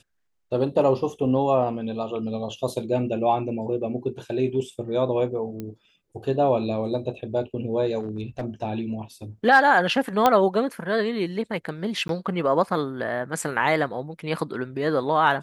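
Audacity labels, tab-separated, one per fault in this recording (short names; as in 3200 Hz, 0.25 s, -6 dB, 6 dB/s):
5.600000	5.600000	pop -20 dBFS
7.990000	8.440000	clipped -24.5 dBFS
10.260000	10.260000	pop -5 dBFS
12.080000	12.090000	gap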